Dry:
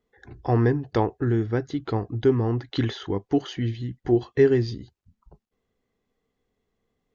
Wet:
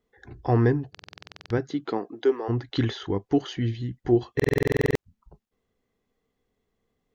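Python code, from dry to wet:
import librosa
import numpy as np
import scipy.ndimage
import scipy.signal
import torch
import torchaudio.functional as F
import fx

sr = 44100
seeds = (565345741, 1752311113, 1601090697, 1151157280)

y = fx.highpass(x, sr, hz=fx.line((1.57, 120.0), (2.48, 450.0)), slope=24, at=(1.57, 2.48), fade=0.02)
y = fx.buffer_glitch(y, sr, at_s=(0.9, 4.35), block=2048, repeats=12)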